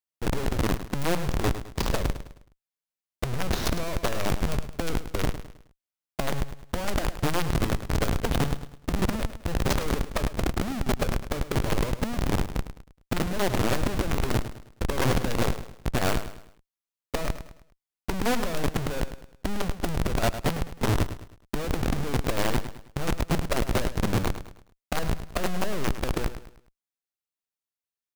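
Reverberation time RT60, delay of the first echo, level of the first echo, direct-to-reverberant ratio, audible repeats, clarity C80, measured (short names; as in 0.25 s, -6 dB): none, 0.105 s, -11.5 dB, none, 3, none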